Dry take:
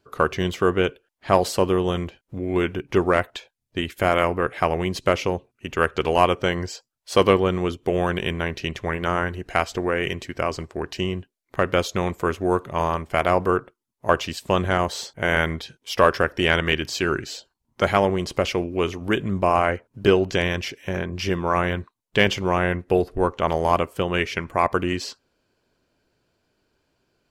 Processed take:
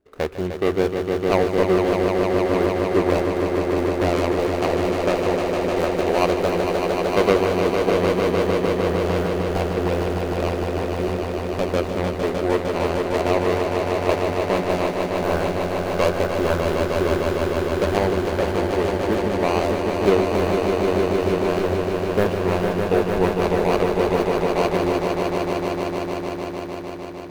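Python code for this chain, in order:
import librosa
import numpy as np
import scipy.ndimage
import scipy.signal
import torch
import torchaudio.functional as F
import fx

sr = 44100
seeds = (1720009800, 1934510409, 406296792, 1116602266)

y = scipy.signal.medfilt(x, 41)
y = fx.peak_eq(y, sr, hz=130.0, db=-12.0, octaves=0.79)
y = fx.echo_swell(y, sr, ms=152, loudest=5, wet_db=-6)
y = y * librosa.db_to_amplitude(1.5)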